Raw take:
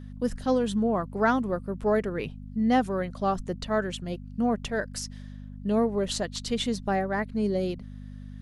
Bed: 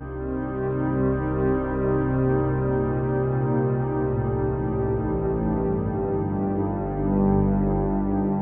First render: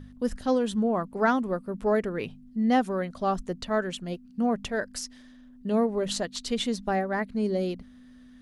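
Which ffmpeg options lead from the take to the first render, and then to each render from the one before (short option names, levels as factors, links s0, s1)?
-af "bandreject=f=50:t=h:w=4,bandreject=f=100:t=h:w=4,bandreject=f=150:t=h:w=4,bandreject=f=200:t=h:w=4"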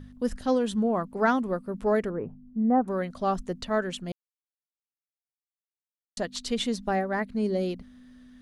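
-filter_complex "[0:a]asettb=1/sr,asplit=3[s0][s1][s2];[s0]atrim=end=2.104[s3];[s1]atrim=start=2.1:end=2.88,asetpts=PTS-STARTPTS,afade=t=in:d=0.004:c=qsin,afade=t=out:st=0.776:d=0.004:c=qsin,lowpass=f=1200:w=0.5412,lowpass=f=1200:w=1.3066[s4];[s2]atrim=start=2.876[s5];[s3][s4]acrossfade=d=0.004:c1=hsin:c2=qsin[s6];[s6][s5]acrossfade=d=0.004:c1=qsin:c2=hsin,asplit=3[s7][s8][s9];[s7]atrim=end=4.12,asetpts=PTS-STARTPTS,afade=t=out:st=4.116:d=0.004:c=hsin[s10];[s8]atrim=start=4.12:end=6.17,asetpts=PTS-STARTPTS,volume=0[s11];[s9]atrim=start=6.17,asetpts=PTS-STARTPTS,afade=t=in:d=0.004:c=hsin[s12];[s10][s11][s12]concat=n=3:v=0:a=1"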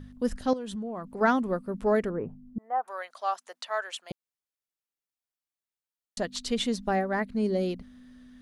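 -filter_complex "[0:a]asettb=1/sr,asplit=3[s0][s1][s2];[s0]atrim=end=0.534[s3];[s1]atrim=start=0.53:end=1.21,asetpts=PTS-STARTPTS,afade=t=in:d=0.004:c=qsin,afade=t=out:st=0.676:d=0.004:c=qsin,acompressor=threshold=0.0224:ratio=5:attack=3.2:release=140:knee=1:detection=peak[s4];[s2]atrim=start=1.206[s5];[s3][s4]acrossfade=d=0.004:c1=hsin:c2=qsin[s6];[s6][s5]acrossfade=d=0.004:c1=qsin:c2=hsin,asettb=1/sr,asplit=3[s7][s8][s9];[s7]atrim=end=2.584[s10];[s8]atrim=start=2.58:end=4.11,asetpts=PTS-STARTPTS,afade=t=in:d=0.004:c=qsin,afade=t=out:st=1.526:d=0.004:c=qsin,highpass=f=700:w=0.5412,highpass=f=700:w=1.3066[s11];[s9]atrim=start=4.106[s12];[s10][s11]acrossfade=d=0.004:c1=hsin:c2=qsin[s13];[s13][s12]acrossfade=d=0.004:c1=qsin:c2=hsin"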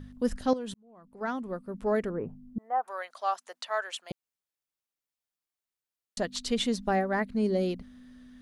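-filter_complex "[0:a]asplit=2[s0][s1];[s0]atrim=end=0.74,asetpts=PTS-STARTPTS,afade=t=out:st=0.736:d=0.004:c=hsin[s2];[s1]atrim=start=0.74,asetpts=PTS-STARTPTS,afade=t=in:d=1.69[s3];[s2][s3]concat=n=2:v=0:a=1"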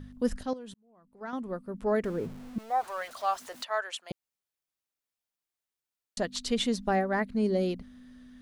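-filter_complex "[0:a]asettb=1/sr,asplit=3[s0][s1][s2];[s0]atrim=end=2.044[s3];[s1]atrim=start=2.04:end=3.64,asetpts=PTS-STARTPTS,afade=t=in:d=0.004:c=qsin,afade=t=out:st=1.596:d=0.004:c=qsin,aeval=exprs='val(0)+0.5*0.00631*sgn(val(0))':c=same[s4];[s2]atrim=start=3.636[s5];[s3][s4]acrossfade=d=0.004:c1=hsin:c2=qsin[s6];[s6][s5]acrossfade=d=0.004:c1=qsin:c2=hsin,asplit=3[s7][s8][s9];[s7]atrim=end=0.432[s10];[s8]atrim=start=0.428:end=1.332,asetpts=PTS-STARTPTS,volume=0.447[s11];[s9]atrim=start=1.328[s12];[s10][s11]acrossfade=d=0.004:c1=hsin:c2=hsin[s13];[s13][s12]acrossfade=d=0.004:c1=hsin:c2=hsin"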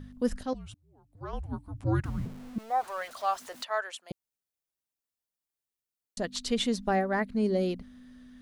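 -filter_complex "[0:a]asettb=1/sr,asplit=3[s0][s1][s2];[s0]atrim=end=0.544[s3];[s1]atrim=start=0.54:end=2.26,asetpts=PTS-STARTPTS,afade=t=in:d=0.004:c=qsin,afade=t=out:st=1.716:d=0.004:c=qsin,afreqshift=-300[s4];[s2]atrim=start=2.256[s5];[s3][s4]acrossfade=d=0.004:c1=hsin:c2=qsin[s6];[s6][s5]acrossfade=d=0.004:c1=qsin:c2=hsin,asettb=1/sr,asplit=3[s7][s8][s9];[s7]atrim=end=3.924[s10];[s8]atrim=start=3.92:end=6.24,asetpts=PTS-STARTPTS,afade=t=in:d=0.004:c=qsin,afade=t=out:st=2.316:d=0.004:c=qsin,equalizer=f=1900:w=0.35:g=-6[s11];[s9]atrim=start=6.236[s12];[s10][s11]acrossfade=d=0.004:c1=hsin:c2=qsin[s13];[s13][s12]acrossfade=d=0.004:c1=qsin:c2=hsin"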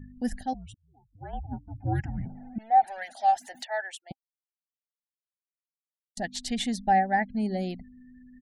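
-af "afftfilt=real='re*gte(hypot(re,im),0.00282)':imag='im*gte(hypot(re,im),0.00282)':win_size=1024:overlap=0.75,firequalizer=gain_entry='entry(270,0);entry(460,-12);entry(800,11);entry(1100,-28);entry(1700,5);entry(2600,-2);entry(6600,1);entry(11000,4)':delay=0.05:min_phase=1"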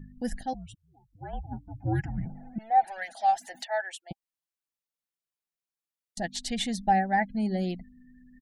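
-af "aecho=1:1:6:0.37"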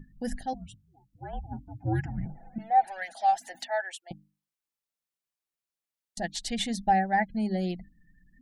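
-af "bandreject=f=50:t=h:w=6,bandreject=f=100:t=h:w=6,bandreject=f=150:t=h:w=6,bandreject=f=200:t=h:w=6,bandreject=f=250:t=h:w=6,bandreject=f=300:t=h:w=6"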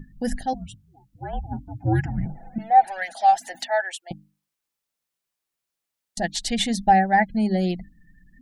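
-af "volume=2.24"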